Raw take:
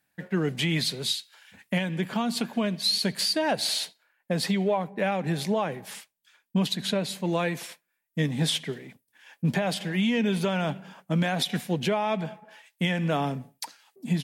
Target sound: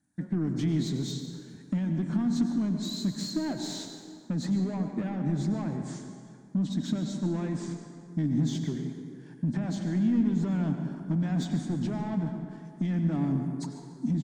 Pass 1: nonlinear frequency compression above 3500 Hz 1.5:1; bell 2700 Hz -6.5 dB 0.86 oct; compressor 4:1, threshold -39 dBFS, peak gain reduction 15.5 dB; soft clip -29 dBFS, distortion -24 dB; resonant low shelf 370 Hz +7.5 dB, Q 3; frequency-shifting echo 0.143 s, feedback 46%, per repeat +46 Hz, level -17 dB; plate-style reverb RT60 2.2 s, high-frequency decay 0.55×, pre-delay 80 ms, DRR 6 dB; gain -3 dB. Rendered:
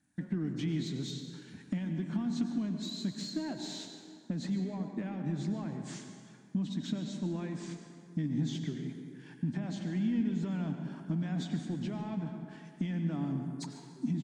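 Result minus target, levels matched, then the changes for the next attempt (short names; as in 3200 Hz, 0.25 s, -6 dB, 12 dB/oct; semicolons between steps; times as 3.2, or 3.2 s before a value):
compressor: peak gain reduction +8.5 dB; 2000 Hz band +3.0 dB
change: bell 2700 Hz -16.5 dB 0.86 oct; change: compressor 4:1, threshold -28 dBFS, peak gain reduction 7 dB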